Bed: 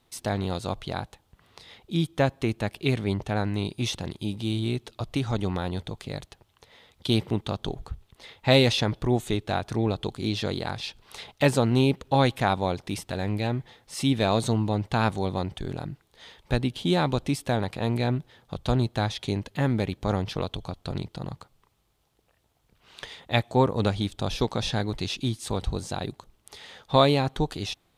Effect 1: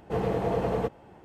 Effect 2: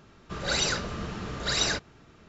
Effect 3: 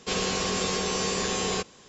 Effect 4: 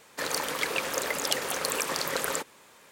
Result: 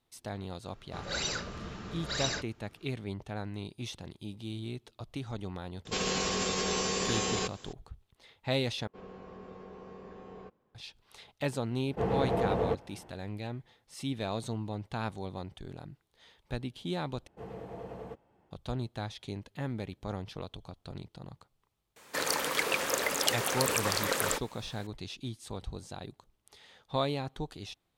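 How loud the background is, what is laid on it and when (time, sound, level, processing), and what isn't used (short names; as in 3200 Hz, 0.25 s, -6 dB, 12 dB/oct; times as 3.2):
bed -11.5 dB
0.63 add 2 -7 dB
5.85 add 3 -1 dB + limiter -20.5 dBFS
8.87 replace with 3 -17.5 dB + LPF 1100 Hz
11.87 add 1 -2 dB + high shelf 5800 Hz -10 dB
17.27 replace with 1 -16 dB
21.96 add 4 -0.5 dB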